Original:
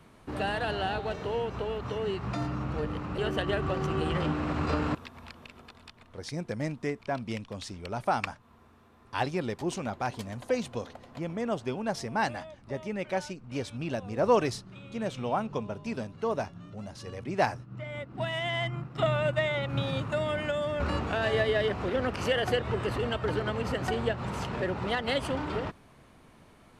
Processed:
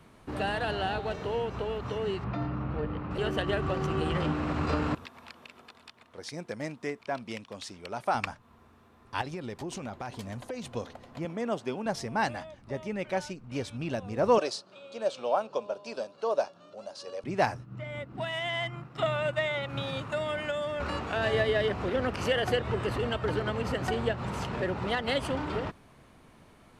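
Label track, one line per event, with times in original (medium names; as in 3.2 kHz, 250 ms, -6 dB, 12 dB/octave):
2.240000	3.110000	distance through air 280 m
5.050000	8.150000	high-pass 330 Hz 6 dB/octave
9.210000	10.720000	compression, threshold -33 dBFS
11.250000	11.860000	high-pass 170 Hz
14.380000	17.240000	cabinet simulation 450–9700 Hz, peaks and dips at 570 Hz +10 dB, 2 kHz -9 dB, 4.5 kHz +7 dB
18.200000	21.160000	bass shelf 340 Hz -7 dB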